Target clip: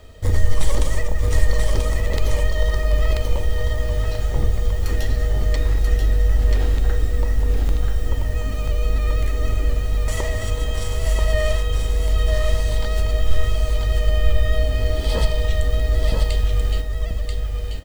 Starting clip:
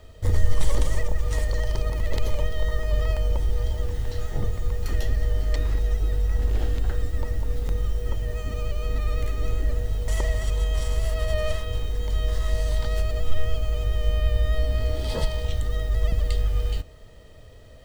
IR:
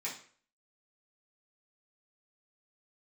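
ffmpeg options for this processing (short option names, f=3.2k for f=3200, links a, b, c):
-filter_complex "[0:a]aecho=1:1:985:0.631,asplit=2[a][b];[1:a]atrim=start_sample=2205[c];[b][c]afir=irnorm=-1:irlink=0,volume=-11.5dB[d];[a][d]amix=inputs=2:normalize=0,volume=3.5dB"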